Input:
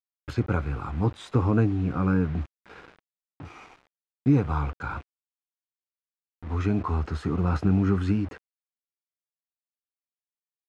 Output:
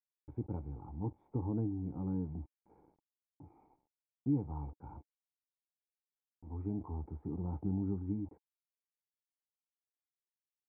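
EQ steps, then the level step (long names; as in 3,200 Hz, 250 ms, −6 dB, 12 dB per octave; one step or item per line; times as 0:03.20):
formant resonators in series u
parametric band 290 Hz −11 dB 0.83 octaves
+1.0 dB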